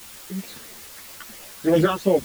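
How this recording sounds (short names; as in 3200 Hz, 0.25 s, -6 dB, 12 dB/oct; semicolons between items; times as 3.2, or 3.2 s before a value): phasing stages 12, 3 Hz, lowest notch 670–1400 Hz; a quantiser's noise floor 8-bit, dither triangular; a shimmering, thickened sound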